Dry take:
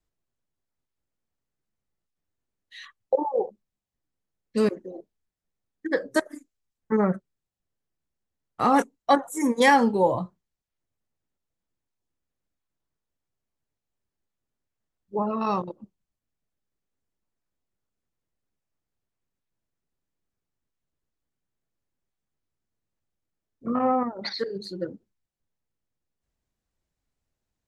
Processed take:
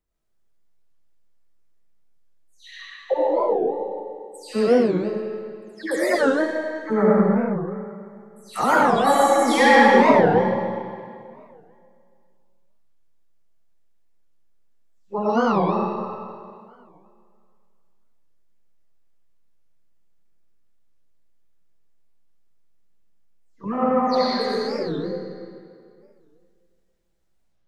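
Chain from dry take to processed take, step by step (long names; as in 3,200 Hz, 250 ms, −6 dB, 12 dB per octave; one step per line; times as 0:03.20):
every frequency bin delayed by itself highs early, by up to 235 ms
comb and all-pass reverb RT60 2.3 s, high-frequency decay 0.85×, pre-delay 45 ms, DRR −6.5 dB
wow of a warped record 45 rpm, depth 250 cents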